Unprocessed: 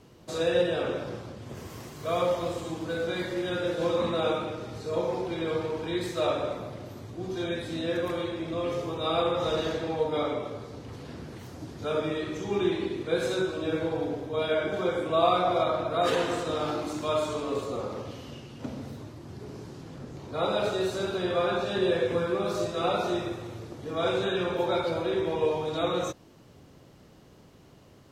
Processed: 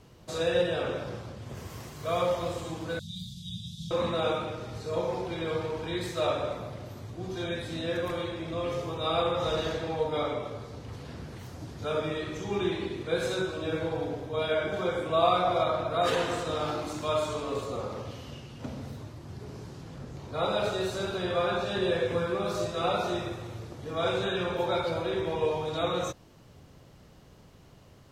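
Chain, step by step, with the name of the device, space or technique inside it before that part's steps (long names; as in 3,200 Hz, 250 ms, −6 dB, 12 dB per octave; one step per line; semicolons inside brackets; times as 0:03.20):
0:02.99–0:03.91: Chebyshev band-stop filter 210–3,300 Hz, order 5
low shelf boost with a cut just above (low-shelf EQ 72 Hz +7 dB; parametric band 310 Hz −4.5 dB 1.1 octaves)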